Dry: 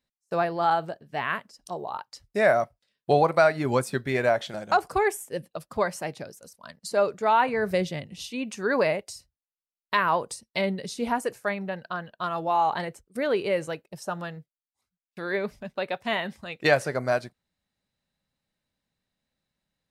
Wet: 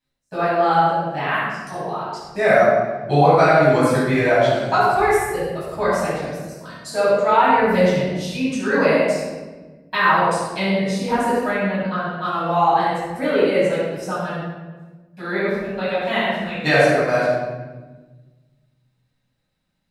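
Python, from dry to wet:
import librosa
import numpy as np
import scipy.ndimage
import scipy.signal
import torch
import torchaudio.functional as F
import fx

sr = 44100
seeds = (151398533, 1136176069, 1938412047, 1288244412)

y = fx.room_shoebox(x, sr, seeds[0], volume_m3=940.0, walls='mixed', distance_m=8.5)
y = y * 10.0 ** (-6.5 / 20.0)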